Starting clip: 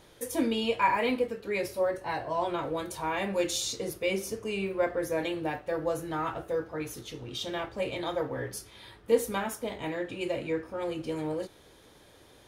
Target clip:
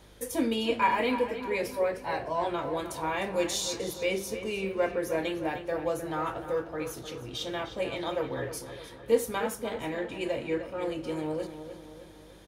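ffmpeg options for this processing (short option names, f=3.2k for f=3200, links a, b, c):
-filter_complex "[0:a]bandreject=f=50:t=h:w=6,bandreject=f=100:t=h:w=6,bandreject=f=150:t=h:w=6,bandreject=f=200:t=h:w=6,aeval=exprs='val(0)+0.00158*(sin(2*PI*50*n/s)+sin(2*PI*2*50*n/s)/2+sin(2*PI*3*50*n/s)/3+sin(2*PI*4*50*n/s)/4+sin(2*PI*5*50*n/s)/5)':c=same,asplit=2[a][b];[b]adelay=305,lowpass=f=4.7k:p=1,volume=-10.5dB,asplit=2[c][d];[d]adelay=305,lowpass=f=4.7k:p=1,volume=0.52,asplit=2[e][f];[f]adelay=305,lowpass=f=4.7k:p=1,volume=0.52,asplit=2[g][h];[h]adelay=305,lowpass=f=4.7k:p=1,volume=0.52,asplit=2[i][j];[j]adelay=305,lowpass=f=4.7k:p=1,volume=0.52,asplit=2[k][l];[l]adelay=305,lowpass=f=4.7k:p=1,volume=0.52[m];[a][c][e][g][i][k][m]amix=inputs=7:normalize=0"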